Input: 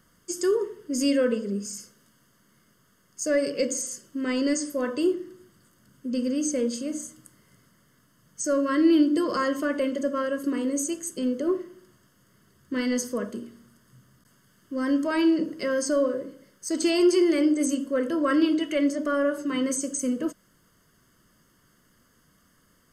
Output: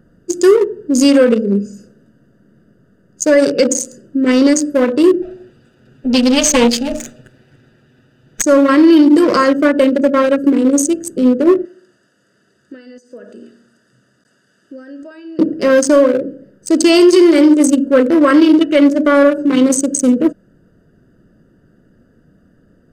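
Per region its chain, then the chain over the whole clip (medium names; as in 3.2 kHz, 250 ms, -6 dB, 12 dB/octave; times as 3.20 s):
5.22–8.42 s: comb filter that takes the minimum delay 8 ms + peaking EQ 3.2 kHz +14.5 dB 2 oct
11.65–15.39 s: frequency weighting ITU-R 468 + compression, threshold -43 dBFS
whole clip: local Wiener filter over 41 samples; bass shelf 190 Hz -5.5 dB; loudness maximiser +19 dB; trim -1 dB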